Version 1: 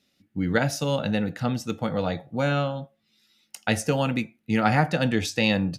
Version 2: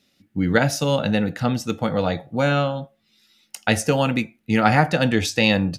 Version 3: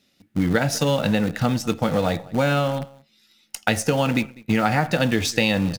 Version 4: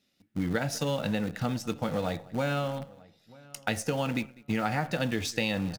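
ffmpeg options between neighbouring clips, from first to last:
-af "asubboost=boost=3:cutoff=64,volume=1.78"
-filter_complex "[0:a]asplit=2[s0][s1];[s1]adelay=198.3,volume=0.0631,highshelf=f=4000:g=-4.46[s2];[s0][s2]amix=inputs=2:normalize=0,asplit=2[s3][s4];[s4]acrusher=bits=5:dc=4:mix=0:aa=0.000001,volume=0.447[s5];[s3][s5]amix=inputs=2:normalize=0,acompressor=threshold=0.158:ratio=6"
-filter_complex "[0:a]asplit=2[s0][s1];[s1]adelay=940,lowpass=f=2500:p=1,volume=0.0708,asplit=2[s2][s3];[s3]adelay=940,lowpass=f=2500:p=1,volume=0.21[s4];[s0][s2][s4]amix=inputs=3:normalize=0,volume=0.355"

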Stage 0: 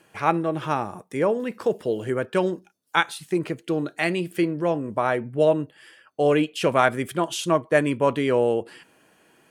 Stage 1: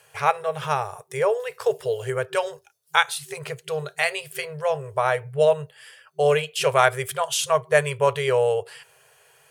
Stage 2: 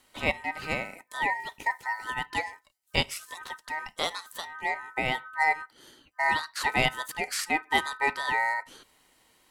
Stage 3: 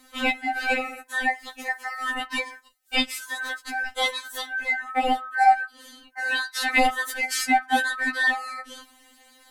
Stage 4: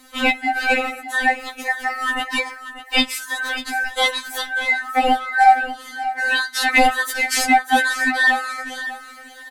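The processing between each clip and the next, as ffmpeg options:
-af "afftfilt=real='re*(1-between(b*sr/4096,160,380))':imag='im*(1-between(b*sr/4096,160,380))':win_size=4096:overlap=0.75,highshelf=f=4200:g=8,volume=1.12"
-af "aeval=exprs='val(0)*sin(2*PI*1400*n/s)':c=same,volume=0.631"
-filter_complex "[0:a]asplit=2[s0][s1];[s1]acompressor=threshold=0.0178:ratio=6,volume=0.891[s2];[s0][s2]amix=inputs=2:normalize=0,afftfilt=real='re*3.46*eq(mod(b,12),0)':imag='im*3.46*eq(mod(b,12),0)':win_size=2048:overlap=0.75,volume=1.68"
-filter_complex "[0:a]asplit=2[s0][s1];[s1]asoftclip=type=hard:threshold=0.158,volume=0.422[s2];[s0][s2]amix=inputs=2:normalize=0,aecho=1:1:592|1184|1776:0.224|0.0604|0.0163,volume=1.41"

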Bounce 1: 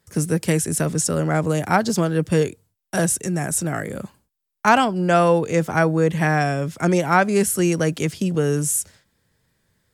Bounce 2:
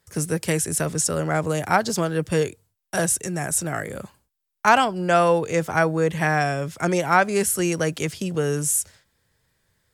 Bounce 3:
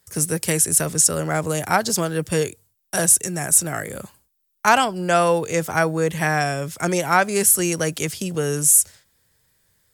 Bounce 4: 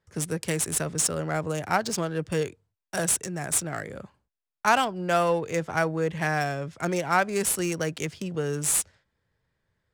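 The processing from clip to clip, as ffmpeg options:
-af "equalizer=f=220:w=0.91:g=-6.5"
-af "crystalizer=i=1.5:c=0"
-af "adynamicsmooth=sensitivity=3:basefreq=2600,volume=0.531"

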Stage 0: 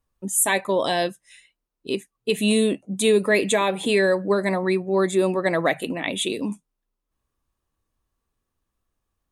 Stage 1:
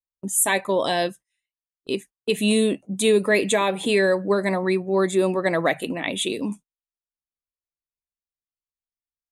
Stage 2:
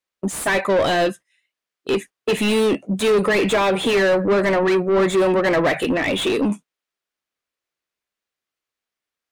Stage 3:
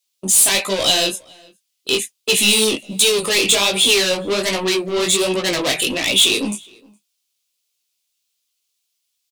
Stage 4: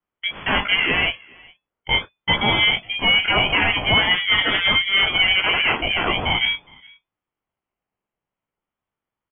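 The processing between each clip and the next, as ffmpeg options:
-af "agate=range=0.0355:threshold=0.0112:ratio=16:detection=peak"
-filter_complex "[0:a]equalizer=f=880:w=1.7:g=-6,asplit=2[s0][s1];[s1]highpass=f=720:p=1,volume=25.1,asoftclip=type=tanh:threshold=0.422[s2];[s0][s2]amix=inputs=2:normalize=0,lowpass=f=1500:p=1,volume=0.501,volume=0.841"
-filter_complex "[0:a]flanger=delay=15.5:depth=7.7:speed=1.3,aexciter=amount=10.1:drive=2.8:freq=2600,asplit=2[s0][s1];[s1]adelay=414,volume=0.0501,highshelf=f=4000:g=-9.32[s2];[s0][s2]amix=inputs=2:normalize=0,volume=0.891"
-filter_complex "[0:a]acrossover=split=120[s0][s1];[s0]asoftclip=type=tanh:threshold=0.0112[s2];[s2][s1]amix=inputs=2:normalize=0,lowpass=f=2600:t=q:w=0.5098,lowpass=f=2600:t=q:w=0.6013,lowpass=f=2600:t=q:w=0.9,lowpass=f=2600:t=q:w=2.563,afreqshift=-3000,aeval=exprs='val(0)*sin(2*PI*420*n/s+420*0.25/0.44*sin(2*PI*0.44*n/s))':c=same,volume=1.78"

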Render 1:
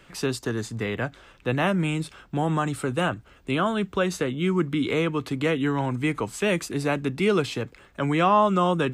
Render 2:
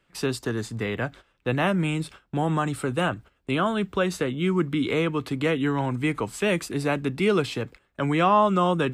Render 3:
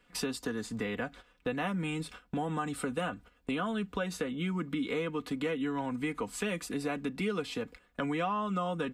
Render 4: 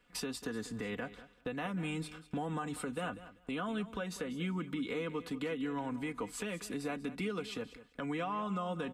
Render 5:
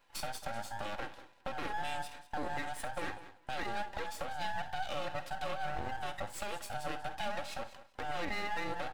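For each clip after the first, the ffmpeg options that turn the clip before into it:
-af "agate=range=0.178:threshold=0.00794:ratio=16:detection=peak,equalizer=f=6400:w=3.9:g=-3.5"
-af "aecho=1:1:4.1:0.64,acompressor=threshold=0.02:ratio=3"
-af "alimiter=level_in=1.12:limit=0.0631:level=0:latency=1:release=120,volume=0.891,aecho=1:1:193|386:0.178|0.0302,volume=0.708"
-af "afftfilt=real='real(if(between(b,1,1008),(2*floor((b-1)/48)+1)*48-b,b),0)':imag='imag(if(between(b,1,1008),(2*floor((b-1)/48)+1)*48-b,b),0)*if(between(b,1,1008),-1,1)':win_size=2048:overlap=0.75,aeval=exprs='max(val(0),0)':c=same,aecho=1:1:49|67:0.178|0.133,volume=1.41"

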